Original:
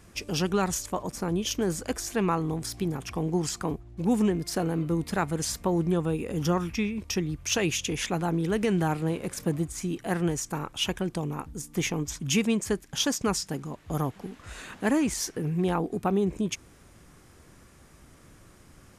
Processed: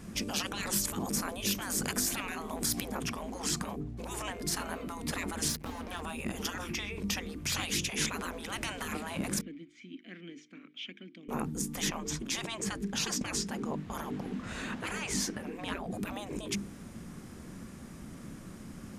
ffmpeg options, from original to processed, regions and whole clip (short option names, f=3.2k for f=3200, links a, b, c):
-filter_complex "[0:a]asettb=1/sr,asplit=3[a][b][c];[a]atrim=end=0.744[d];[b]atrim=start=0.74:end=2.86,asetpts=PTS-STARTPTS,afade=t=in:d=0.004:c=qsin,afade=t=out:st=2.116:d=0.004:c=qsin,highshelf=f=12k:g=11.5,acompressor=mode=upward:threshold=-28dB:ratio=2.5:attack=3.2:release=140:knee=2.83:detection=peak[e];[c]atrim=start=2.856[f];[d][e]acrossfade=d=0.004:c1=hsin:c2=qsin[g];[g][f]acrossfade=d=0.004:c1=qsin:c2=hsin,asettb=1/sr,asplit=3[h][i][j];[h]atrim=end=5.484[k];[i]atrim=start=5.48:end=6.02,asetpts=PTS-STARTPTS,afade=t=in:d=0.004:c=qsin,afade=t=out:st=0.536:d=0.004:c=qsin,equalizer=f=7.7k:t=o:w=0.4:g=-8.5,aeval=exprs='sgn(val(0))*max(abs(val(0))-0.00562,0)':c=same[l];[j]atrim=start=6.016[m];[k][l]acrossfade=d=0.004:c1=hsin:c2=qsin[n];[n][m]acrossfade=d=0.004:c1=qsin:c2=hsin,asettb=1/sr,asplit=3[o][p][q];[o]atrim=end=9.414[r];[p]atrim=start=9.41:end=11.29,asetpts=PTS-STARTPTS,afade=t=in:d=0.004:c=qsin,afade=t=out:st=1.876:d=0.004:c=qsin,asplit=3[s][t][u];[s]bandpass=f=270:t=q:w=8,volume=0dB[v];[t]bandpass=f=2.29k:t=q:w=8,volume=-6dB[w];[u]bandpass=f=3.01k:t=q:w=8,volume=-9dB[x];[v][w][x]amix=inputs=3:normalize=0,acrossover=split=540 6100:gain=0.1 1 0.0891[y][z][aa];[y][z][aa]amix=inputs=3:normalize=0[ab];[q]atrim=start=11.286[ac];[r][ab]acrossfade=d=0.004:c1=hsin:c2=qsin[ad];[ad][ac]acrossfade=d=0.004:c1=qsin:c2=hsin,asettb=1/sr,asplit=3[ae][af][ag];[ae]atrim=end=11.894[ah];[af]atrim=start=11.89:end=15.91,asetpts=PTS-STARTPTS,afade=t=in:d=0.004:c=qsin,afade=t=out:st=4.016:d=0.004:c=qsin,highshelf=f=8.1k:g=-11,bandreject=f=60:t=h:w=6,bandreject=f=120:t=h:w=6,bandreject=f=180:t=h:w=6[ai];[ag]atrim=start=15.906[aj];[ah][ai]acrossfade=d=0.004:c1=hsin:c2=qsin[ak];[ak][aj]acrossfade=d=0.004:c1=qsin:c2=hsin,bandreject=f=50:t=h:w=6,bandreject=f=100:t=h:w=6,bandreject=f=150:t=h:w=6,bandreject=f=200:t=h:w=6,bandreject=f=250:t=h:w=6,bandreject=f=300:t=h:w=6,bandreject=f=350:t=h:w=6,bandreject=f=400:t=h:w=6,bandreject=f=450:t=h:w=6,afftfilt=real='re*lt(hypot(re,im),0.0631)':imag='im*lt(hypot(re,im),0.0631)':win_size=1024:overlap=0.75,equalizer=f=210:t=o:w=1:g=14,volume=3dB"